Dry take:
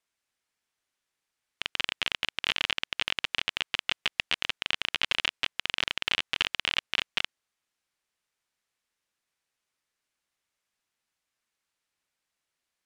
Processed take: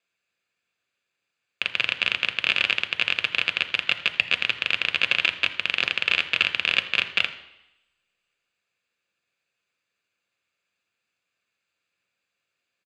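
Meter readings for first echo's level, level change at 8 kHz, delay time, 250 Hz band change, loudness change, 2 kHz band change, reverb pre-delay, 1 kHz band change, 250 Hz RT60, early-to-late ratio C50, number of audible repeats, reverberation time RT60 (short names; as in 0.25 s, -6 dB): -18.5 dB, -2.0 dB, 82 ms, +4.0 dB, +6.5 dB, +8.5 dB, 3 ms, +3.0 dB, 0.85 s, 13.0 dB, 1, 0.85 s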